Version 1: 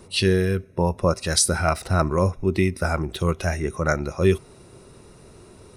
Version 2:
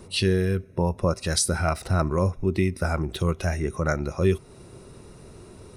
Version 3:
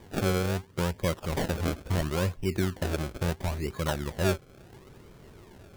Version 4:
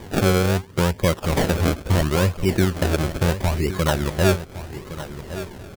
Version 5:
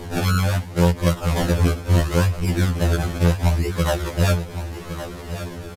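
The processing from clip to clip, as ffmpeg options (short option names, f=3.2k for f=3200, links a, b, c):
-filter_complex "[0:a]lowshelf=f=360:g=3.5,asplit=2[a][b];[b]acompressor=threshold=-26dB:ratio=6,volume=1dB[c];[a][c]amix=inputs=2:normalize=0,volume=-7dB"
-af "acrusher=samples=32:mix=1:aa=0.000001:lfo=1:lforange=32:lforate=0.73,volume=-5dB"
-filter_complex "[0:a]asplit=2[a][b];[b]acompressor=threshold=-37dB:ratio=6,volume=-1dB[c];[a][c]amix=inputs=2:normalize=0,aecho=1:1:1114:0.224,volume=7dB"
-af "aeval=exprs='val(0)+0.5*0.0282*sgn(val(0))':c=same,aresample=32000,aresample=44100,afftfilt=real='re*2*eq(mod(b,4),0)':imag='im*2*eq(mod(b,4),0)':win_size=2048:overlap=0.75"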